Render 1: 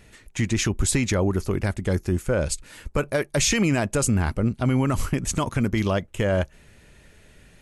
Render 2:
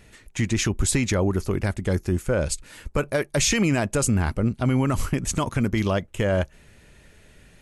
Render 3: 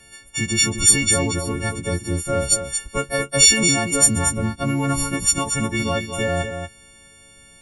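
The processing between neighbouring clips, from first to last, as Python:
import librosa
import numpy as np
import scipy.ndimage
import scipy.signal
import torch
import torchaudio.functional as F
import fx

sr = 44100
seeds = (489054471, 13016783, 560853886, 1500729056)

y1 = x
y2 = fx.freq_snap(y1, sr, grid_st=4)
y2 = y2 + 10.0 ** (-7.5 / 20.0) * np.pad(y2, (int(231 * sr / 1000.0), 0))[:len(y2)]
y2 = y2 * 10.0 ** (-1.0 / 20.0)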